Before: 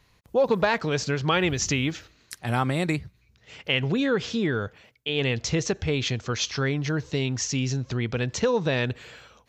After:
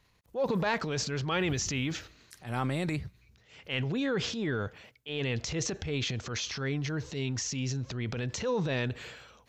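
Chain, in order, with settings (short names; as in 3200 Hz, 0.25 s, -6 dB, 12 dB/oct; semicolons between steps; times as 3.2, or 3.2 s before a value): transient shaper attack -8 dB, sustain +7 dB; gain -6 dB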